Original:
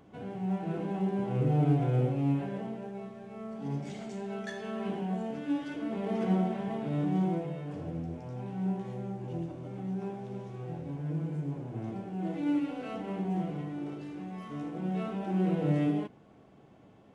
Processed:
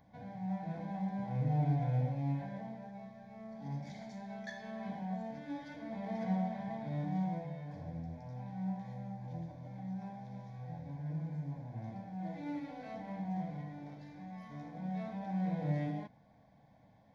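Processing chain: static phaser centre 1.9 kHz, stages 8; trim -3 dB

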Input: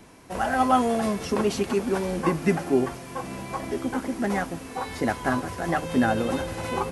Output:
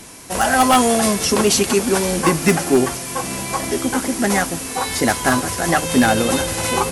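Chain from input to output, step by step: peaking EQ 9.5 kHz +14.5 dB 2.5 oct; wavefolder -12.5 dBFS; trim +7 dB

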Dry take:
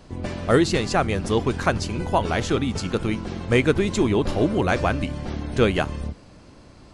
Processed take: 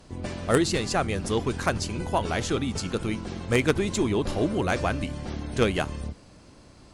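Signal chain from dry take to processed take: Chebyshev shaper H 3 -13 dB, 5 -22 dB, 6 -39 dB, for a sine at -5 dBFS; treble shelf 6.7 kHz +9 dB; trim -1 dB

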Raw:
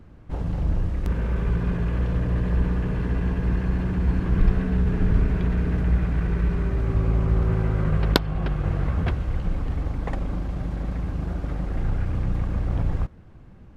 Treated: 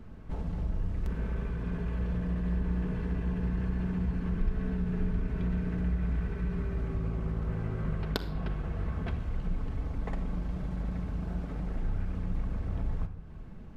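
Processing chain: compression 2:1, threshold -37 dBFS, peak gain reduction 14 dB; reverberation RT60 0.90 s, pre-delay 5 ms, DRR 6 dB; trim -1 dB

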